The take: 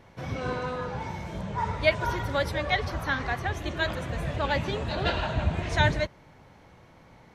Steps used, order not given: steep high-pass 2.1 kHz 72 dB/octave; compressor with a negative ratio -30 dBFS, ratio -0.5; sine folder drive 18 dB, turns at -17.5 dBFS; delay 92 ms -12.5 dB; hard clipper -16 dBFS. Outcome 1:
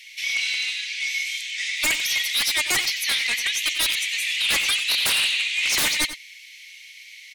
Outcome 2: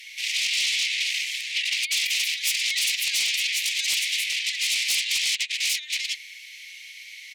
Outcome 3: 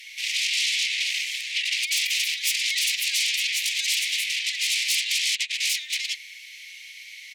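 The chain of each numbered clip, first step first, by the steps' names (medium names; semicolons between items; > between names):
hard clipper > steep high-pass > compressor with a negative ratio > sine folder > delay; delay > compressor with a negative ratio > sine folder > steep high-pass > hard clipper; hard clipper > delay > compressor with a negative ratio > sine folder > steep high-pass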